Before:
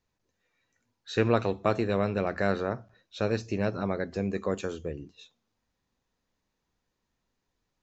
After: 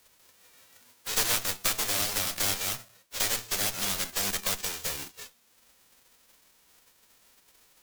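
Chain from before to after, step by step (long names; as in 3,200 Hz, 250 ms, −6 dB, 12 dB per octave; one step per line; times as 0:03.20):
spectral envelope flattened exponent 0.1
harmonic generator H 8 −11 dB, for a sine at −5.5 dBFS
multiband upward and downward compressor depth 70%
level −3 dB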